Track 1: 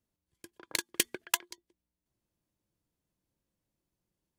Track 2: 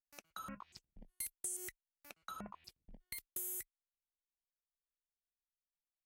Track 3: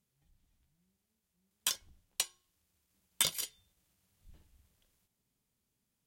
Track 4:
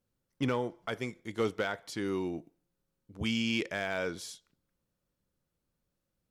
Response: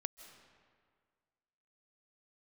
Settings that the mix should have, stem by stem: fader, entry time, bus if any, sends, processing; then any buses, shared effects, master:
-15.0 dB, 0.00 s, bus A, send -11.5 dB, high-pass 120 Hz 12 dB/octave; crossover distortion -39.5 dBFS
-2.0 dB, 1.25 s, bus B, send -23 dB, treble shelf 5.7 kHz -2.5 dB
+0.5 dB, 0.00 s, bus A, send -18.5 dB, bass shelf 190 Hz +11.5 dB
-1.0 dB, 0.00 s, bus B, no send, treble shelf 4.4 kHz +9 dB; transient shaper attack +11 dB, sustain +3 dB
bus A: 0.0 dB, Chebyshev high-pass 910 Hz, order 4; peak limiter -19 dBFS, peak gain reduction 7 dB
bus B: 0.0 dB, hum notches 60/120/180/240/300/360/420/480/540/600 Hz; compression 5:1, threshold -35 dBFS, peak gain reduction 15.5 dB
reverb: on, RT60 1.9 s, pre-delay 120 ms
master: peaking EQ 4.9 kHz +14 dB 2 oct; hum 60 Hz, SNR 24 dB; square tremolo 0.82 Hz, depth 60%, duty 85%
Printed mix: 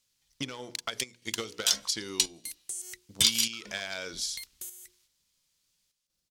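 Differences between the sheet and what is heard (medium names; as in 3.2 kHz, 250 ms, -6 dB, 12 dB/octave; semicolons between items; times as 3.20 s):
stem 4 -1.0 dB -> -8.0 dB; master: missing hum 60 Hz, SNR 24 dB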